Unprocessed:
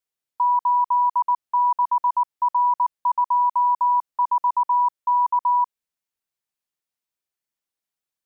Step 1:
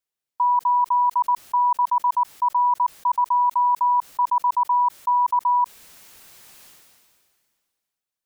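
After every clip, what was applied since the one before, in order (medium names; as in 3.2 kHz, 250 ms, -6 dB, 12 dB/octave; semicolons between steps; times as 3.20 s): decay stretcher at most 29 dB/s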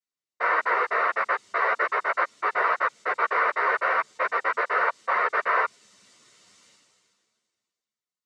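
noise-vocoded speech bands 6; comb of notches 830 Hz; three-phase chorus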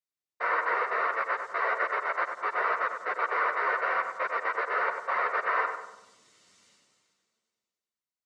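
filtered feedback delay 97 ms, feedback 51%, low-pass 2 kHz, level -6 dB; trim -5 dB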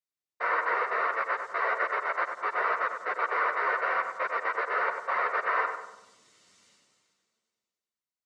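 short-mantissa float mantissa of 8-bit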